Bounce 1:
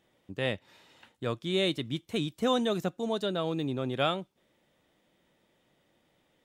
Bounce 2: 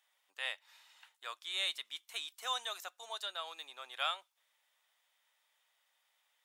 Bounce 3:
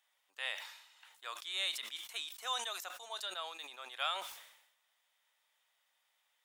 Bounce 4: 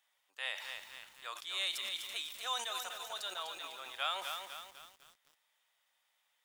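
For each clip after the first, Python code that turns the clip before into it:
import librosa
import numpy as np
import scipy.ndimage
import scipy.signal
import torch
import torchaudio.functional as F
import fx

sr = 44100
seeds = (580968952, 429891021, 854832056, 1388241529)

y1 = scipy.signal.sosfilt(scipy.signal.butter(4, 870.0, 'highpass', fs=sr, output='sos'), x)
y1 = fx.high_shelf(y1, sr, hz=5300.0, db=7.5)
y1 = F.gain(torch.from_numpy(y1), -4.5).numpy()
y2 = fx.sustainer(y1, sr, db_per_s=66.0)
y2 = F.gain(torch.from_numpy(y2), -1.0).numpy()
y3 = fx.echo_crushed(y2, sr, ms=250, feedback_pct=55, bits=9, wet_db=-5.5)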